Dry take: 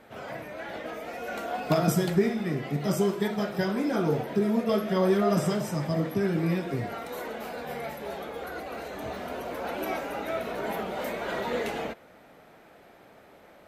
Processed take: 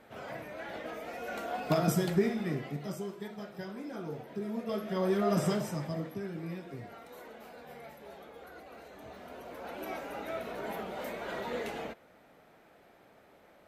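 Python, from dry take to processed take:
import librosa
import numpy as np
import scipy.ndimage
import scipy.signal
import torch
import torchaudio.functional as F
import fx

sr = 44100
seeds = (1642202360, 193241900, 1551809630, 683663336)

y = fx.gain(x, sr, db=fx.line((2.54, -4.0), (3.01, -14.0), (4.19, -14.0), (5.51, -2.5), (6.28, -13.0), (9.06, -13.0), (10.17, -6.5)))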